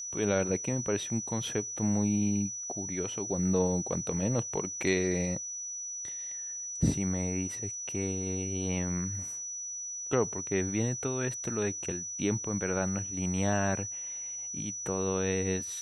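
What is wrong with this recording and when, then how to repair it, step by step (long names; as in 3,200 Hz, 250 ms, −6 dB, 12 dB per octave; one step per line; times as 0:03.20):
whistle 5,900 Hz −36 dBFS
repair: notch filter 5,900 Hz, Q 30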